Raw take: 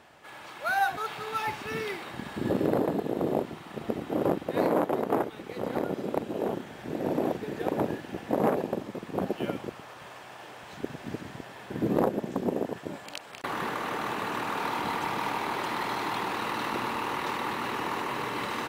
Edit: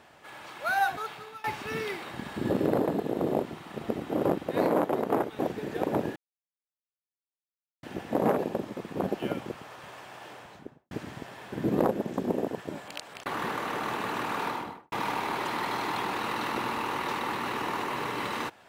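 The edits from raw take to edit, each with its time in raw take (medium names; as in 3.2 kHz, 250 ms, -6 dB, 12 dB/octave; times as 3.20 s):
0.89–1.44 s: fade out, to -20.5 dB
5.39–7.24 s: delete
8.01 s: insert silence 1.67 s
10.47–11.09 s: studio fade out
14.59–15.10 s: studio fade out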